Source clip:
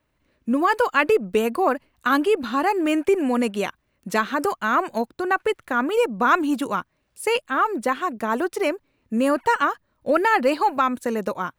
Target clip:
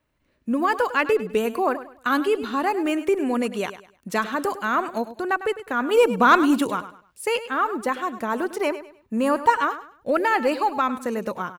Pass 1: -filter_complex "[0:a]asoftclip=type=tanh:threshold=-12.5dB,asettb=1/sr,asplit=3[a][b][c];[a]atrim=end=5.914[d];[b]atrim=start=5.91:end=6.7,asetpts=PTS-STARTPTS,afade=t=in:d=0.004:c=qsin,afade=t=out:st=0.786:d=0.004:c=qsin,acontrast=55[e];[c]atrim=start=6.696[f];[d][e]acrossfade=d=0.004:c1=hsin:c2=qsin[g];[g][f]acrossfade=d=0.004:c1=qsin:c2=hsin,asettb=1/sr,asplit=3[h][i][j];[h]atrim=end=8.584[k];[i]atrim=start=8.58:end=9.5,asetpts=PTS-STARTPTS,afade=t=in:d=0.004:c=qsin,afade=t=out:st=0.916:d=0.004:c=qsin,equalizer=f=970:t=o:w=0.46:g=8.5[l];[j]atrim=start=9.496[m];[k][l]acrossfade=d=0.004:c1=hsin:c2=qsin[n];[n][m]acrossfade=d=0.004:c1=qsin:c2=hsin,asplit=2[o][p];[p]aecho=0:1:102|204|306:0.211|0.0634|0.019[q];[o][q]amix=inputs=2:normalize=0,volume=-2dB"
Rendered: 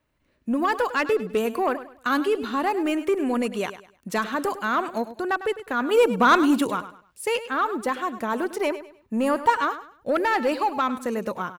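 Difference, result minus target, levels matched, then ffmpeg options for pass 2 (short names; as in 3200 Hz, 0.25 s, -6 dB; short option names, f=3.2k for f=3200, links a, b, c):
soft clip: distortion +17 dB
-filter_complex "[0:a]asoftclip=type=tanh:threshold=-2dB,asettb=1/sr,asplit=3[a][b][c];[a]atrim=end=5.914[d];[b]atrim=start=5.91:end=6.7,asetpts=PTS-STARTPTS,afade=t=in:d=0.004:c=qsin,afade=t=out:st=0.786:d=0.004:c=qsin,acontrast=55[e];[c]atrim=start=6.696[f];[d][e]acrossfade=d=0.004:c1=hsin:c2=qsin[g];[g][f]acrossfade=d=0.004:c1=qsin:c2=hsin,asettb=1/sr,asplit=3[h][i][j];[h]atrim=end=8.584[k];[i]atrim=start=8.58:end=9.5,asetpts=PTS-STARTPTS,afade=t=in:d=0.004:c=qsin,afade=t=out:st=0.916:d=0.004:c=qsin,equalizer=f=970:t=o:w=0.46:g=8.5[l];[j]atrim=start=9.496[m];[k][l]acrossfade=d=0.004:c1=hsin:c2=qsin[n];[n][m]acrossfade=d=0.004:c1=qsin:c2=hsin,asplit=2[o][p];[p]aecho=0:1:102|204|306:0.211|0.0634|0.019[q];[o][q]amix=inputs=2:normalize=0,volume=-2dB"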